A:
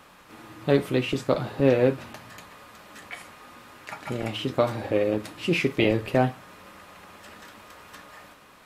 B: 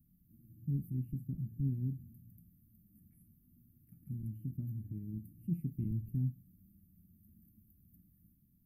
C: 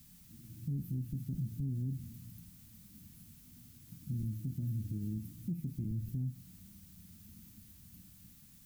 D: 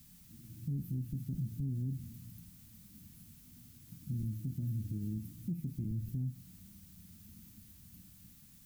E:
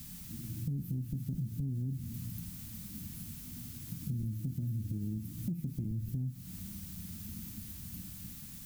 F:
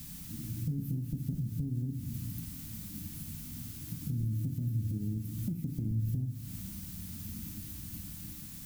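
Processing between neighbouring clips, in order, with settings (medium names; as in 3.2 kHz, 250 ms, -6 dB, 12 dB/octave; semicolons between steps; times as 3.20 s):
inverse Chebyshev band-stop 490–7000 Hz, stop band 50 dB; trim -5 dB
added noise blue -68 dBFS; compression 3:1, threshold -37 dBFS, peak gain reduction 6.5 dB; peak limiter -36.5 dBFS, peak gain reduction 6.5 dB; trim +7 dB
no audible change
compression 3:1, threshold -48 dBFS, peak gain reduction 11.5 dB; trim +11.5 dB
FDN reverb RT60 1.2 s, low-frequency decay 1.3×, high-frequency decay 0.55×, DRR 9 dB; trim +1.5 dB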